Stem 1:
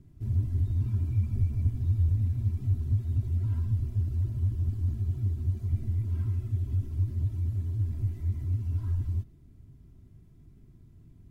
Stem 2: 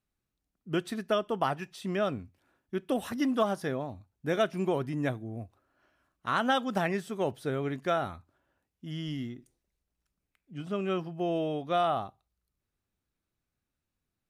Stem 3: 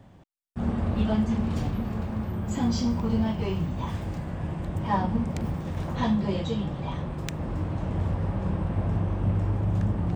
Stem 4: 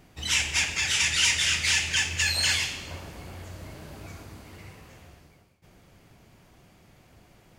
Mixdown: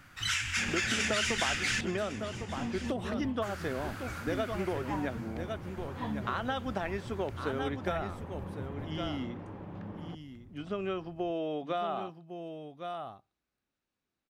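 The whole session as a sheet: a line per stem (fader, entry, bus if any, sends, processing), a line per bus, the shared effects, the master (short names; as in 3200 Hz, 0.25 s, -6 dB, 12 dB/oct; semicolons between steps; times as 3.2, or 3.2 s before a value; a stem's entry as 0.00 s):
-11.5 dB, 0.00 s, no bus, no send, no echo send, negative-ratio compressor -33 dBFS, ratio -1
+1.5 dB, 0.00 s, bus A, no send, echo send -13.5 dB, dry
-9.0 dB, 0.00 s, bus A, no send, echo send -23.5 dB, LPF 3800 Hz; notch 650 Hz, Q 12
-0.5 dB, 0.00 s, muted 1.81–3.42, no bus, no send, echo send -15.5 dB, resonant high-pass 1400 Hz, resonance Q 4.8; compressor 6:1, threshold -29 dBFS, peak gain reduction 13 dB
bus A: 0.0 dB, BPF 220–5600 Hz; compressor, threshold -30 dBFS, peak gain reduction 10.5 dB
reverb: off
echo: echo 1.104 s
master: dry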